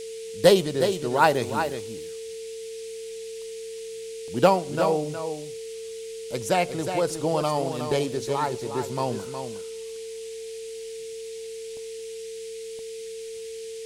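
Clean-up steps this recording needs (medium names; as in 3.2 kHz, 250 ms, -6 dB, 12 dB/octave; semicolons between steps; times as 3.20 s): band-stop 450 Hz, Q 30; interpolate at 4.28/11.77/12.79 s, 1.1 ms; noise print and reduce 30 dB; inverse comb 364 ms -8 dB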